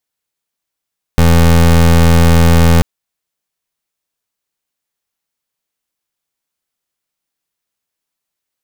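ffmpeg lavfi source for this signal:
ffmpeg -f lavfi -i "aevalsrc='0.447*(2*lt(mod(83.5*t,1),0.25)-1)':duration=1.64:sample_rate=44100" out.wav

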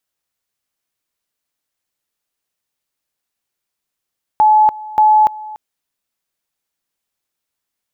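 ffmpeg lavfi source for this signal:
ffmpeg -f lavfi -i "aevalsrc='pow(10,(-6.5-20*gte(mod(t,0.58),0.29))/20)*sin(2*PI*857*t)':duration=1.16:sample_rate=44100" out.wav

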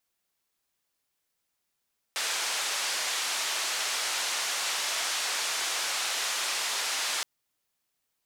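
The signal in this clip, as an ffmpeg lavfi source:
ffmpeg -f lavfi -i "anoisesrc=color=white:duration=5.07:sample_rate=44100:seed=1,highpass=frequency=690,lowpass=frequency=6800,volume=-20.3dB" out.wav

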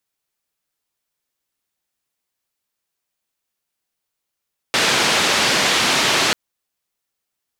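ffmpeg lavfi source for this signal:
ffmpeg -f lavfi -i "anoisesrc=color=white:duration=1.59:sample_rate=44100:seed=1,highpass=frequency=140,lowpass=frequency=4400,volume=-5.4dB" out.wav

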